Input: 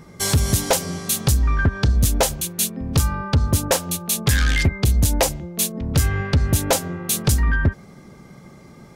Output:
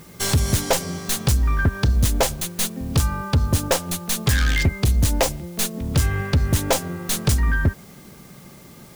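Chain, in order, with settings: tracing distortion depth 0.049 ms; in parallel at -11.5 dB: word length cut 6-bit, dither triangular; on the sum: trim -3 dB

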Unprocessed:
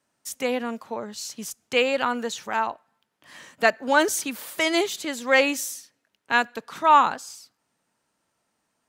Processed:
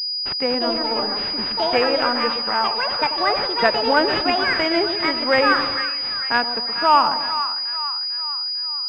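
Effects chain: companding laws mixed up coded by A; in parallel at +0.5 dB: compression, threshold -28 dBFS, peak gain reduction 15.5 dB; on the sum: two-band feedback delay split 1 kHz, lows 121 ms, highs 448 ms, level -8 dB; ever faster or slower copies 301 ms, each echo +5 st, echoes 2; class-D stage that switches slowly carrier 4.9 kHz

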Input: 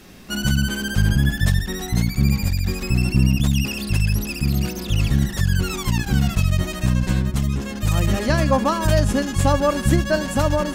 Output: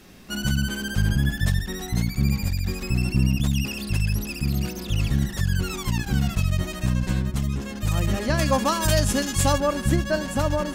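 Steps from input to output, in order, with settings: 8.39–9.58 s: treble shelf 2.5 kHz +10 dB; trim -4 dB

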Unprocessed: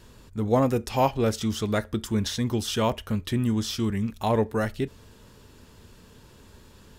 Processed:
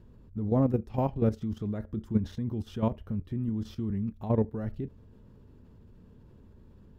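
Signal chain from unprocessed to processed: level held to a coarse grid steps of 11 dB; FFT filter 210 Hz 0 dB, 9.1 kHz -28 dB, 14 kHz -22 dB; trim +3 dB

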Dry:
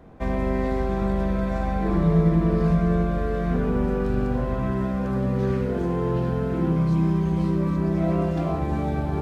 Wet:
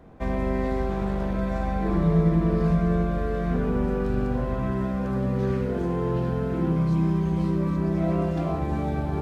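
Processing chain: 0.89–1.36 s: one-sided clip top -24.5 dBFS; trim -1.5 dB

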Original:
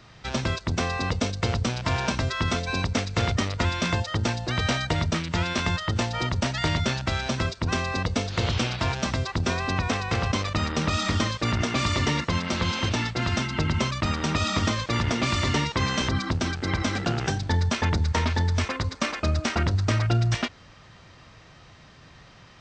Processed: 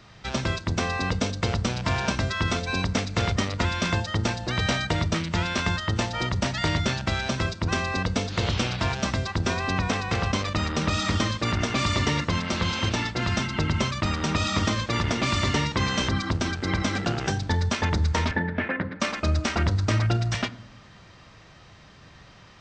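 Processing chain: 18.31–19.00 s: cabinet simulation 160–2500 Hz, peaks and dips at 180 Hz +9 dB, 300 Hz +7 dB, 570 Hz +4 dB, 1.1 kHz -7 dB, 1.7 kHz +8 dB; reverberation RT60 0.75 s, pre-delay 5 ms, DRR 14.5 dB

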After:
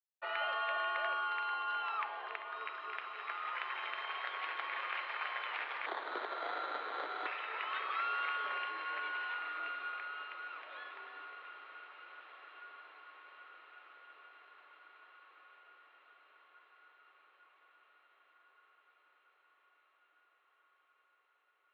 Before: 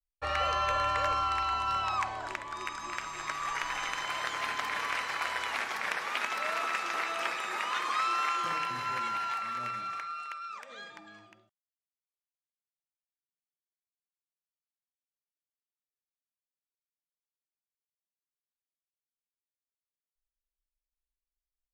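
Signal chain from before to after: 5.86–7.26 s: sample-rate reducer 2.6 kHz, jitter 0%; mistuned SSB +76 Hz 280–3500 Hz; echo that smears into a reverb 1699 ms, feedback 61%, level -12.5 dB; trim -6.5 dB

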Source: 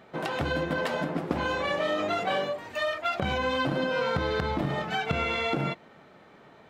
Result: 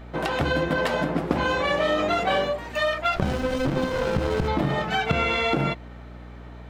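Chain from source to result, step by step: hum 60 Hz, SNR 17 dB; 3.16–4.48 s: sliding maximum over 33 samples; trim +5 dB

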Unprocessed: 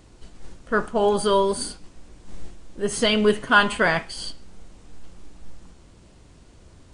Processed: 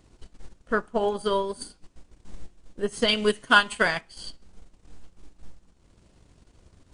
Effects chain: 3.08–4.01 s: treble shelf 3.1 kHz +12 dB; transient shaper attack +6 dB, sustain -9 dB; trim -7 dB

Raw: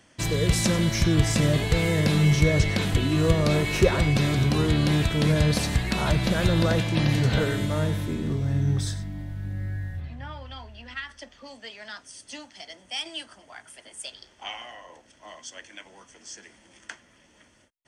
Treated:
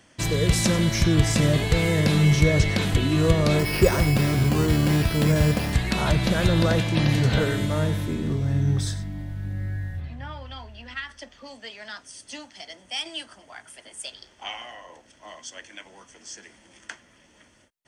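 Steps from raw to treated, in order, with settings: 3.59–5.73 s: careless resampling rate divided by 6×, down filtered, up hold; trim +1.5 dB

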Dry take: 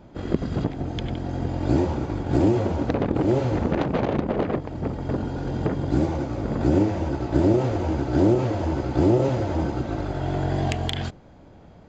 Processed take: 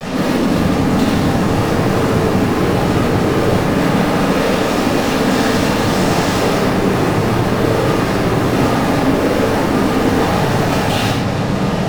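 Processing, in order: 4.18–6.58 s: tilt EQ +3 dB/octave; compression 5:1, threshold -34 dBFS, peak gain reduction 17 dB; flange 0.21 Hz, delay 3.5 ms, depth 2.8 ms, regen -9%; noise-vocoded speech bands 12; fuzz box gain 62 dB, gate -59 dBFS; simulated room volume 770 m³, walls mixed, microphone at 6.1 m; trim -13.5 dB

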